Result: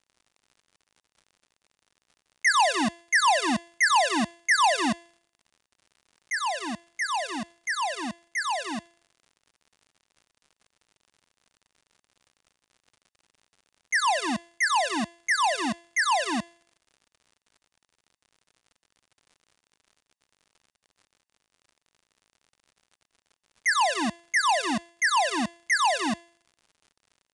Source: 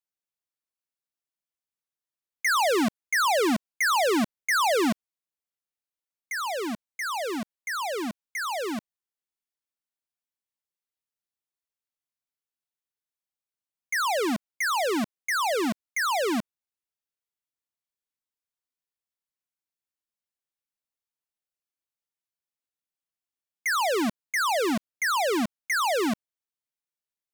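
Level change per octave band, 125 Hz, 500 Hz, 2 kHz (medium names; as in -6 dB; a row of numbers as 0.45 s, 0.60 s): -0.5 dB, -5.0 dB, +2.5 dB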